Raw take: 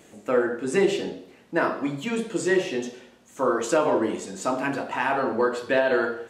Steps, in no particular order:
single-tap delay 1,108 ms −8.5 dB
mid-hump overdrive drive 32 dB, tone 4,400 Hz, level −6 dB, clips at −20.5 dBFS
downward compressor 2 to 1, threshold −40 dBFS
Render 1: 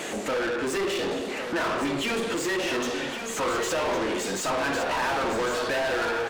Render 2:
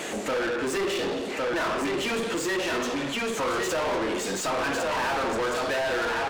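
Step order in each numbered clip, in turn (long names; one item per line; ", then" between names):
downward compressor, then mid-hump overdrive, then single-tap delay
single-tap delay, then downward compressor, then mid-hump overdrive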